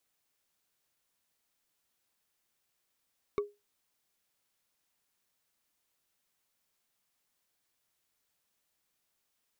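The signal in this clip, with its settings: wood hit, lowest mode 411 Hz, decay 0.23 s, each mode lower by 7 dB, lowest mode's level -24 dB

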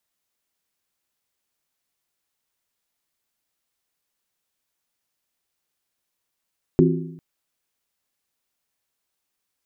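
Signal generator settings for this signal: skin hit length 0.40 s, lowest mode 164 Hz, modes 4, decay 0.88 s, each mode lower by 0.5 dB, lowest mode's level -14 dB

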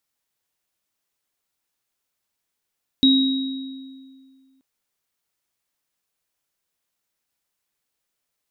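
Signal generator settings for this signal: sine partials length 1.58 s, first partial 266 Hz, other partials 3.81 kHz, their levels -2 dB, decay 2.04 s, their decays 1.40 s, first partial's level -12 dB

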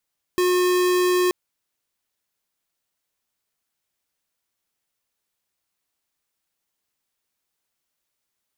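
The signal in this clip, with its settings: tone square 361 Hz -19 dBFS 0.93 s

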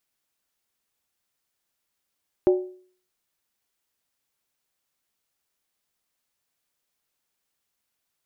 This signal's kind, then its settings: skin hit, lowest mode 367 Hz, decay 0.49 s, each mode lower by 10 dB, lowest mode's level -12 dB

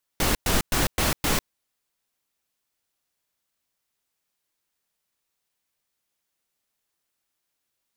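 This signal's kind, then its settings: noise bursts pink, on 0.15 s, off 0.11 s, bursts 5, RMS -22 dBFS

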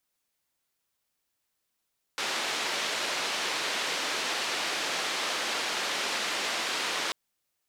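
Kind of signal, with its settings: noise band 330–4200 Hz, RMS -31 dBFS 4.94 s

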